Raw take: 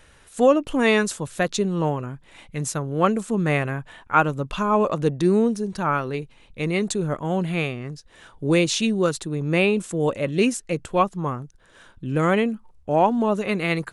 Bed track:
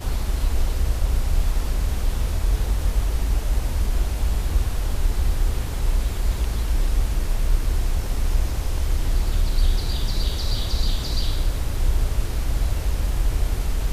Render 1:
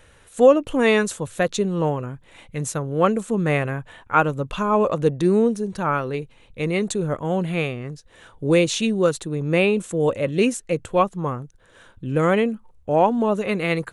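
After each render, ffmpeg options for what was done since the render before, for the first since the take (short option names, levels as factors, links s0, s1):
-af "equalizer=f=100:t=o:w=0.33:g=6,equalizer=f=500:t=o:w=0.33:g=5,equalizer=f=5000:t=o:w=0.33:g=-5"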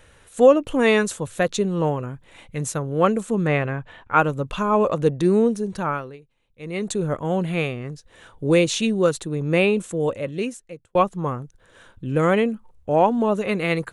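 -filter_complex "[0:a]asettb=1/sr,asplit=3[s0][s1][s2];[s0]atrim=end=3.474[s3];[s1]atrim=start=3.47:end=4.15,asetpts=PTS-STARTPTS,afade=t=in:d=0.004:c=qsin,afade=t=out:st=0.676:d=0.004:c=qsin,lowpass=4600[s4];[s2]atrim=start=4.146[s5];[s3][s4]acrossfade=d=0.004:c1=hsin:c2=qsin[s6];[s6][s5]acrossfade=d=0.004:c1=qsin:c2=hsin,asplit=4[s7][s8][s9][s10];[s7]atrim=end=6.18,asetpts=PTS-STARTPTS,afade=t=out:st=5.78:d=0.4:silence=0.11885[s11];[s8]atrim=start=6.18:end=6.57,asetpts=PTS-STARTPTS,volume=0.119[s12];[s9]atrim=start=6.57:end=10.95,asetpts=PTS-STARTPTS,afade=t=in:d=0.4:silence=0.11885,afade=t=out:st=3.16:d=1.22[s13];[s10]atrim=start=10.95,asetpts=PTS-STARTPTS,afade=t=in:d=0.004:c=hsin[s14];[s11][s12][s13][s14]concat=n=4:v=0:a=1"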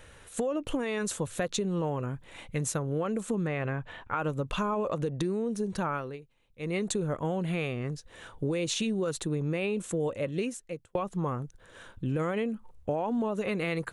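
-af "alimiter=limit=0.178:level=0:latency=1:release=71,acompressor=threshold=0.0447:ratio=6"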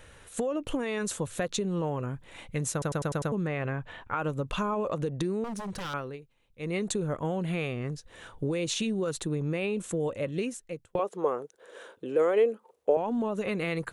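-filter_complex "[0:a]asettb=1/sr,asplit=3[s0][s1][s2];[s0]atrim=end=5.444[s3];[s1]atrim=start=5.44:end=5.94,asetpts=PTS-STARTPTS,afade=t=in:d=0.004:c=qsin,afade=t=out:st=0.496:d=0.004:c=qsin,aeval=exprs='0.0299*(abs(mod(val(0)/0.0299+3,4)-2)-1)':c=same[s4];[s2]atrim=start=5.936[s5];[s3][s4]acrossfade=d=0.004:c1=hsin:c2=qsin[s6];[s6][s5]acrossfade=d=0.004:c1=qsin:c2=hsin,asettb=1/sr,asplit=3[s7][s8][s9];[s7]atrim=end=10.994[s10];[s8]atrim=start=10.99:end=12.97,asetpts=PTS-STARTPTS,afade=t=in:d=0.004:c=qsin,afade=t=out:st=1.976:d=0.004:c=qsin,highpass=f=440:t=q:w=3.5[s11];[s9]atrim=start=12.966[s12];[s10][s11]acrossfade=d=0.004:c1=hsin:c2=qsin[s13];[s13][s12]acrossfade=d=0.004:c1=qsin:c2=hsin,asplit=7[s14][s15][s16][s17][s18][s19][s20];[s14]atrim=end=2.822[s21];[s15]atrim=start=2.718:end=2.822[s22];[s16]atrim=start=2.718:end=2.822[s23];[s17]atrim=start=2.718:end=2.822[s24];[s18]atrim=start=2.718:end=2.822[s25];[s19]atrim=start=2.718:end=2.822[s26];[s20]atrim=start=3.318[s27];[s21][s22]acrossfade=d=0.004:c1=hsin:c2=hsin[s28];[s28][s23]acrossfade=d=0.004:c1=hsin:c2=hsin[s29];[s29][s24]acrossfade=d=0.004:c1=hsin:c2=hsin[s30];[s30][s25]acrossfade=d=0.004:c1=hsin:c2=hsin[s31];[s31][s26]acrossfade=d=0.004:c1=hsin:c2=hsin[s32];[s32][s27]acrossfade=d=0.004:c1=hsin:c2=hsin"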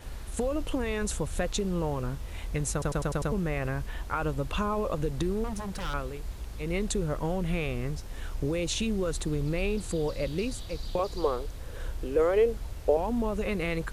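-filter_complex "[1:a]volume=0.168[s0];[0:a][s0]amix=inputs=2:normalize=0"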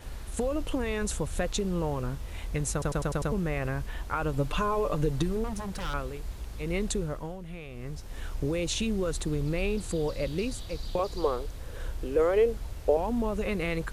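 -filter_complex "[0:a]asettb=1/sr,asplit=3[s0][s1][s2];[s0]atrim=end=4.334[s3];[s1]atrim=start=4.33:end=5.37,asetpts=PTS-STARTPTS,afade=t=in:d=0.004:c=qsin,afade=t=out:st=1.036:d=0.004:c=qsin,aecho=1:1:6.8:0.65,atrim=end_sample=45864[s4];[s2]atrim=start=5.366[s5];[s3][s4]acrossfade=d=0.004:c1=hsin:c2=qsin[s6];[s6][s5]acrossfade=d=0.004:c1=qsin:c2=hsin,asplit=3[s7][s8][s9];[s7]atrim=end=7.38,asetpts=PTS-STARTPTS,afade=t=out:st=6.9:d=0.48:silence=0.266073[s10];[s8]atrim=start=7.38:end=7.7,asetpts=PTS-STARTPTS,volume=0.266[s11];[s9]atrim=start=7.7,asetpts=PTS-STARTPTS,afade=t=in:d=0.48:silence=0.266073[s12];[s10][s11][s12]concat=n=3:v=0:a=1"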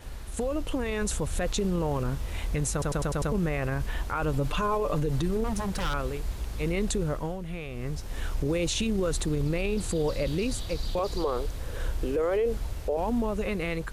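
-af "dynaudnorm=f=200:g=11:m=1.78,alimiter=limit=0.106:level=0:latency=1:release=34"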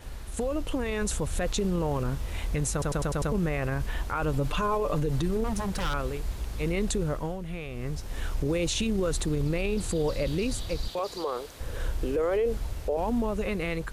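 -filter_complex "[0:a]asettb=1/sr,asplit=3[s0][s1][s2];[s0]atrim=end=10.884[s3];[s1]atrim=start=10.88:end=11.6,asetpts=PTS-STARTPTS,afade=t=in:d=0.004:c=qsin,afade=t=out:st=0.716:d=0.004:c=qsin,highpass=f=460:p=1[s4];[s2]atrim=start=11.596[s5];[s3][s4]acrossfade=d=0.004:c1=hsin:c2=qsin[s6];[s6][s5]acrossfade=d=0.004:c1=qsin:c2=hsin"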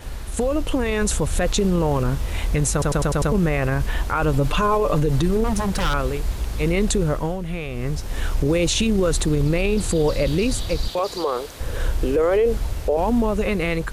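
-af "volume=2.51"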